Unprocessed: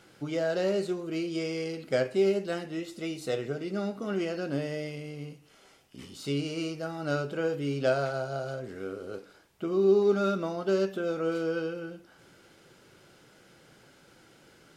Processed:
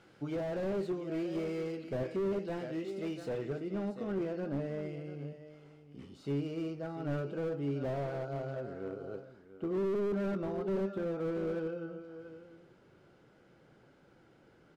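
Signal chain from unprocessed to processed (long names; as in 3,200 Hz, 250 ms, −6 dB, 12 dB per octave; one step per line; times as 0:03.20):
low-pass filter 2,600 Hz 6 dB per octave, from 0:03.60 1,000 Hz
single-tap delay 689 ms −14 dB
slew-rate limiting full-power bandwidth 16 Hz
level −3 dB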